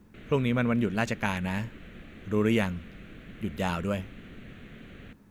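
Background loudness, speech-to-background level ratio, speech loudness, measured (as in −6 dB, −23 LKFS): −48.0 LKFS, 19.0 dB, −29.0 LKFS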